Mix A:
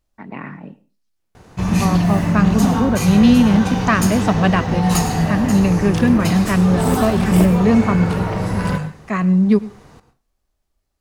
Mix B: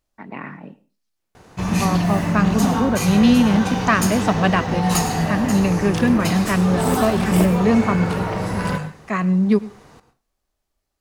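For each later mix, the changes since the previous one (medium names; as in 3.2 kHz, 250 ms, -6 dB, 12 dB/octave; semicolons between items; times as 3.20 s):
master: add bass shelf 190 Hz -6.5 dB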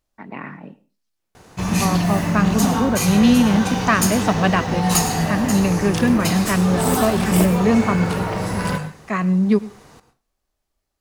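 background: add treble shelf 4.5 kHz +6 dB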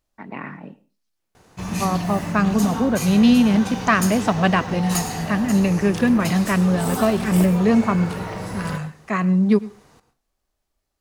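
background -6.5 dB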